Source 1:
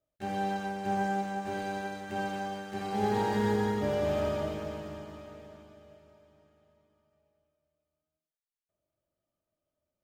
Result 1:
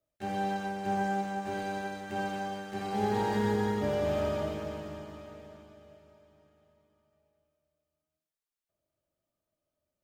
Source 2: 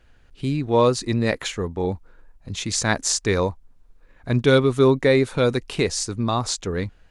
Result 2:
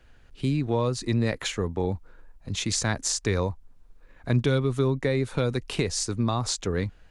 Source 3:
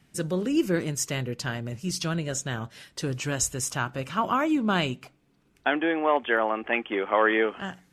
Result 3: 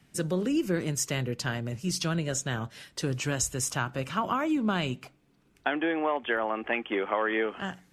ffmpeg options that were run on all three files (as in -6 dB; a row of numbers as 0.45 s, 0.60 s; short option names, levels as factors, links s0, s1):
-filter_complex "[0:a]acrossover=split=150[s0][s1];[s1]acompressor=threshold=0.0631:ratio=5[s2];[s0][s2]amix=inputs=2:normalize=0"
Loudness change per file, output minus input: -0.5 LU, -5.5 LU, -3.0 LU